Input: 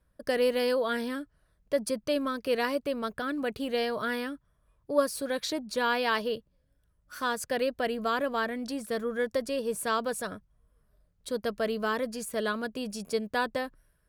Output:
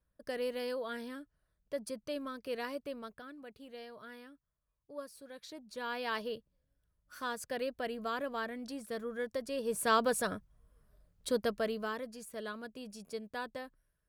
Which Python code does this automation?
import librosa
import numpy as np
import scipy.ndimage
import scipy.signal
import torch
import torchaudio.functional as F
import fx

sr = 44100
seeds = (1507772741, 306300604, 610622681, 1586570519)

y = fx.gain(x, sr, db=fx.line((2.92, -10.5), (3.38, -19.0), (5.32, -19.0), (6.16, -8.0), (9.44, -8.0), (9.94, 1.0), (11.31, 1.0), (12.08, -11.5)))